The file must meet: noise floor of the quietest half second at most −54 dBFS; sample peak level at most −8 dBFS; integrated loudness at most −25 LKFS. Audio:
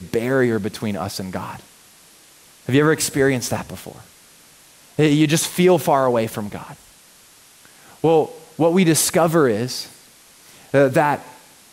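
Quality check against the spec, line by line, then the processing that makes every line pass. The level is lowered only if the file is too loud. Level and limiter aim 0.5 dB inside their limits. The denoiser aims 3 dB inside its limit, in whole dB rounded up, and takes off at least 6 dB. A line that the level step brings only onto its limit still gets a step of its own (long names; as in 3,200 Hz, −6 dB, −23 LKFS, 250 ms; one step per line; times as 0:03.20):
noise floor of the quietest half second −49 dBFS: out of spec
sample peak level −5.0 dBFS: out of spec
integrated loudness −18.5 LKFS: out of spec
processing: level −7 dB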